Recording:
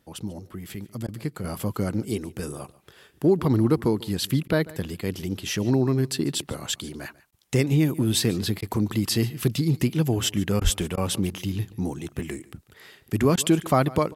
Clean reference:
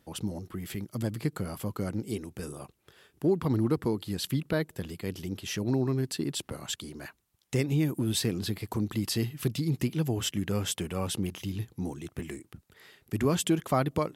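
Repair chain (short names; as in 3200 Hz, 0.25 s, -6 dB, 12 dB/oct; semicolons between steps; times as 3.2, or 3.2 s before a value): de-plosive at 10.63; interpolate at 1.07/4.48/7.31/8.61/10.6/10.96/13.36, 12 ms; inverse comb 0.143 s -20.5 dB; gain 0 dB, from 1.44 s -6 dB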